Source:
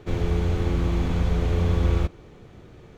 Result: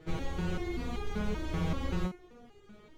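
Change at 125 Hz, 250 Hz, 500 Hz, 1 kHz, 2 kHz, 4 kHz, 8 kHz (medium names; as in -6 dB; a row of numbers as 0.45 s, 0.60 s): -13.5 dB, -7.0 dB, -10.0 dB, -6.0 dB, -5.0 dB, -6.0 dB, no reading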